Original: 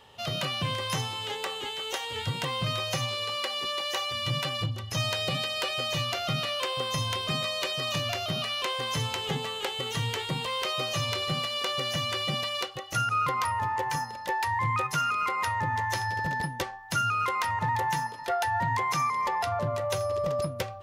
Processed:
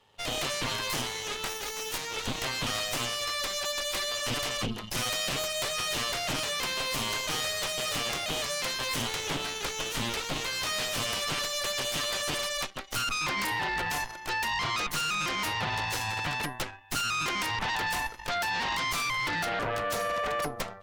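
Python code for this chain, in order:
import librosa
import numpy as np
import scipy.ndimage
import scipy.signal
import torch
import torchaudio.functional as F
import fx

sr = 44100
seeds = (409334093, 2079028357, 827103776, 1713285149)

y = fx.envelope_flatten(x, sr, power=0.6, at=(1.45, 1.96), fade=0.02)
y = fx.cheby_harmonics(y, sr, harmonics=(3, 8), levels_db=(-16, -8), full_scale_db=-16.0)
y = y * librosa.db_to_amplitude(-4.5)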